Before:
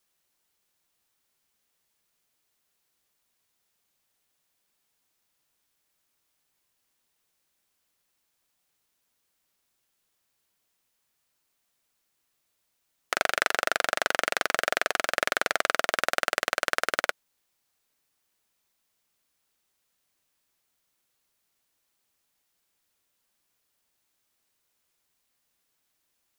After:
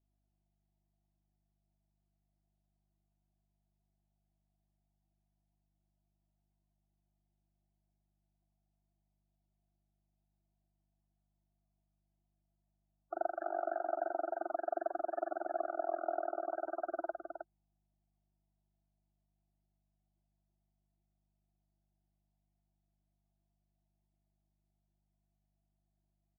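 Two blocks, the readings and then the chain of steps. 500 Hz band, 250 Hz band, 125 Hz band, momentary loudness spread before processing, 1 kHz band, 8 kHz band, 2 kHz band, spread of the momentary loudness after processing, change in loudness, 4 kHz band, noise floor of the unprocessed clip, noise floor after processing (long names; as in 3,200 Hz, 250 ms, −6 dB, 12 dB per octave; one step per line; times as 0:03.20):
−4.5 dB, −4.0 dB, below −20 dB, 2 LU, −8.0 dB, below −40 dB, −25.0 dB, 8 LU, −12.0 dB, below −40 dB, −77 dBFS, −82 dBFS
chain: pair of resonant band-passes 480 Hz, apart 1 octave
mains hum 50 Hz, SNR 35 dB
spectral peaks only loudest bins 32
on a send: single-tap delay 314 ms −6 dB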